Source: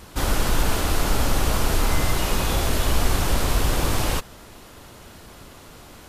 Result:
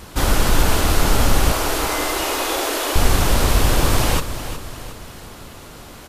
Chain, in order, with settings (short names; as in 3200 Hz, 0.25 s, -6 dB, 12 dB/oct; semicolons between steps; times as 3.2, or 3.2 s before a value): 1.52–2.96 elliptic high-pass 290 Hz; on a send: feedback echo 0.363 s, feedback 47%, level -11.5 dB; on the sum: gain +5 dB